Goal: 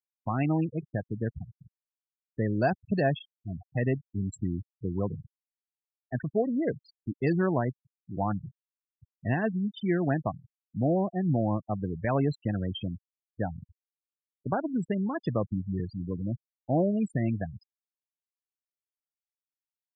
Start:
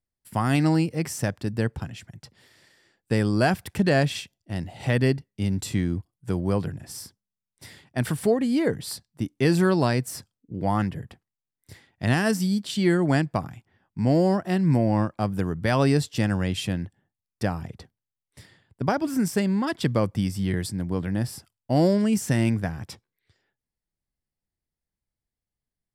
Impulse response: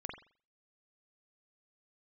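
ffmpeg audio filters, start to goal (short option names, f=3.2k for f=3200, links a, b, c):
-af "atempo=1.3,adynamicequalizer=threshold=0.0112:dfrequency=680:dqfactor=5:tfrequency=680:tqfactor=5:attack=5:release=100:ratio=0.375:range=2:mode=boostabove:tftype=bell,afftfilt=real='re*gte(hypot(re,im),0.0794)':imag='im*gte(hypot(re,im),0.0794)':win_size=1024:overlap=0.75,volume=-5.5dB"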